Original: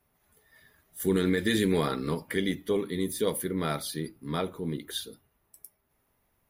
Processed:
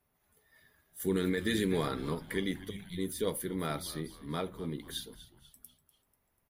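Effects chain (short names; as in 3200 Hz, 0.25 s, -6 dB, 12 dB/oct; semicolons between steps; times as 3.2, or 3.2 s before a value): spectral gain 2.7–2.98, 210–2000 Hz -26 dB; on a send: frequency-shifting echo 0.245 s, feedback 48%, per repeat -100 Hz, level -15.5 dB; on the sum: gain -5 dB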